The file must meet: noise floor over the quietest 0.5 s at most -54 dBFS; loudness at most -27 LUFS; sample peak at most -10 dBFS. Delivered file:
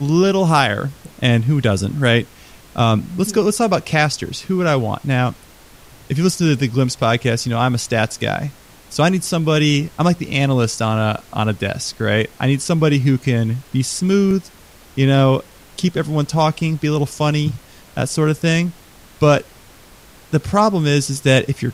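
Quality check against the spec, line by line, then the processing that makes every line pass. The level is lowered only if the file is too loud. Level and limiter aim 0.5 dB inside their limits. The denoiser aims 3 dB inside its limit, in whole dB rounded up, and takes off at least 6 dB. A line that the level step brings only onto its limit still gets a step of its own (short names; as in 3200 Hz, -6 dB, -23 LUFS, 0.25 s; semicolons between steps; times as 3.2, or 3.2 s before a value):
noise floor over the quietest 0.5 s -44 dBFS: fail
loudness -17.5 LUFS: fail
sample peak -2.5 dBFS: fail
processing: denoiser 6 dB, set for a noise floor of -44 dBFS; gain -10 dB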